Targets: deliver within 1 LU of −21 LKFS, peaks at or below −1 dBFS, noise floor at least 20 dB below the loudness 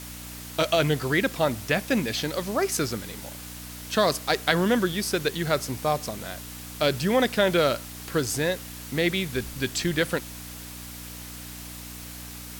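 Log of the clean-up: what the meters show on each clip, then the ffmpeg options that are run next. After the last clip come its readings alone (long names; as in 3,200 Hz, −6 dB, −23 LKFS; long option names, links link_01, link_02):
mains hum 60 Hz; hum harmonics up to 300 Hz; level of the hum −41 dBFS; background noise floor −40 dBFS; target noise floor −46 dBFS; integrated loudness −25.5 LKFS; sample peak −4.0 dBFS; target loudness −21.0 LKFS
→ -af "bandreject=frequency=60:width_type=h:width=4,bandreject=frequency=120:width_type=h:width=4,bandreject=frequency=180:width_type=h:width=4,bandreject=frequency=240:width_type=h:width=4,bandreject=frequency=300:width_type=h:width=4"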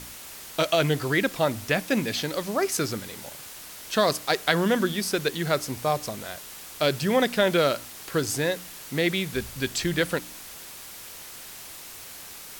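mains hum none found; background noise floor −42 dBFS; target noise floor −46 dBFS
→ -af "afftdn=noise_reduction=6:noise_floor=-42"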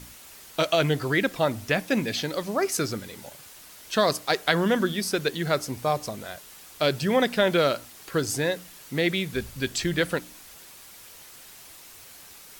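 background noise floor −48 dBFS; integrated loudness −26.0 LKFS; sample peak −4.0 dBFS; target loudness −21.0 LKFS
→ -af "volume=5dB,alimiter=limit=-1dB:level=0:latency=1"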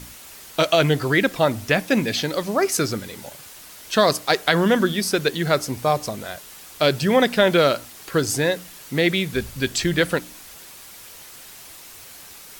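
integrated loudness −21.0 LKFS; sample peak −1.0 dBFS; background noise floor −43 dBFS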